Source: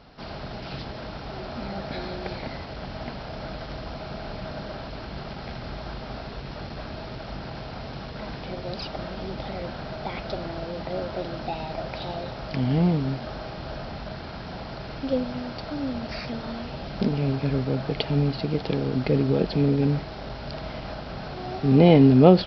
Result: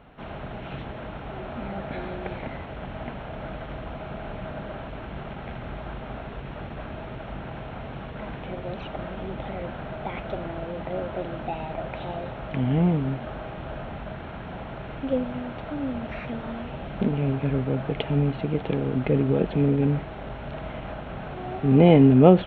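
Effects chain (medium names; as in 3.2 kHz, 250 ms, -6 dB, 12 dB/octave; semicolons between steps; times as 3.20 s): Butterworth band-stop 4.9 kHz, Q 1.1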